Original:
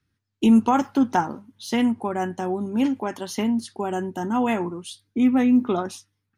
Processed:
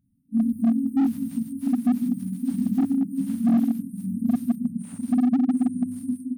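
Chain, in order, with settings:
random phases in long frames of 200 ms
double-tracking delay 48 ms −5 dB
downward compressor 10 to 1, threshold −29 dBFS, peak gain reduction 18.5 dB
reverb whose tail is shaped and stops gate 230 ms rising, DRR 2.5 dB
delay with pitch and tempo change per echo 159 ms, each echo +6 semitones, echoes 3
octave-band graphic EQ 250/500/4,000 Hz +10/+6/+6 dB
multi-tap delay 48/59/148/293/700 ms −17/−12/−8/−16.5/−5.5 dB
reverb reduction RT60 1.5 s
brick-wall band-stop 290–8,500 Hz
dynamic equaliser 130 Hz, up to −4 dB, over −40 dBFS, Q 2.1
slew-rate limiting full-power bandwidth 32 Hz
level +1.5 dB

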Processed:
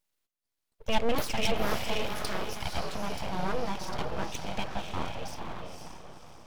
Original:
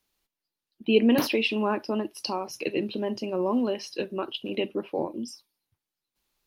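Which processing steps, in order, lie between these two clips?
feedback delay with all-pass diffusion 512 ms, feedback 42%, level −3.5 dB
full-wave rectification
level −3 dB

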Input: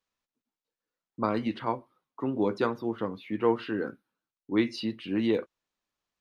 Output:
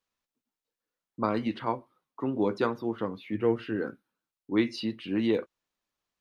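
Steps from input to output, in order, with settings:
0:03.34–0:03.76: graphic EQ with 15 bands 100 Hz +7 dB, 1,000 Hz −10 dB, 4,000 Hz −7 dB

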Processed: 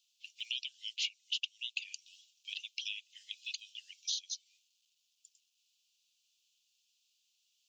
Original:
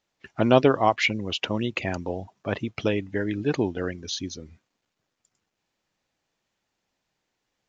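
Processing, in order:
Butterworth high-pass 2,700 Hz 72 dB per octave
downward compressor 2.5 to 1, threshold −46 dBFS, peak gain reduction 14.5 dB
level +7 dB

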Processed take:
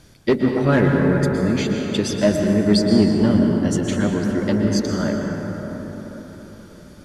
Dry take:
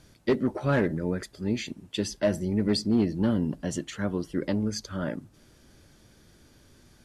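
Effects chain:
dense smooth reverb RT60 4.9 s, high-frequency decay 0.35×, pre-delay 105 ms, DRR 1 dB
level +6.5 dB

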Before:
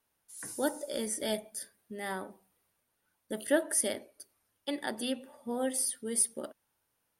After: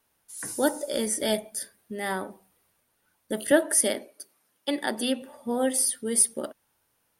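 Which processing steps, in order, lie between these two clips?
0:03.51–0:05.22: high-pass filter 140 Hz 24 dB per octave
level +7 dB

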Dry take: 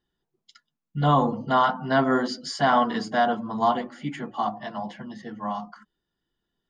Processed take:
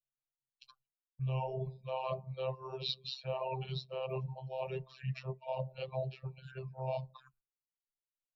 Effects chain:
reversed playback
downward compressor 8 to 1, threshold −28 dBFS, peak gain reduction 13 dB
reversed playback
phases set to zero 163 Hz
noise gate with hold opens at −43 dBFS
phaser swept by the level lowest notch 330 Hz, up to 1,900 Hz, full sweep at −36.5 dBFS
change of speed 0.801×
Chebyshev band-stop filter 200–400 Hz, order 5
reverb reduction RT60 1 s
EQ curve with evenly spaced ripples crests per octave 1.4, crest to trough 6 dB
amplitude modulation by smooth noise, depth 55%
level +3.5 dB

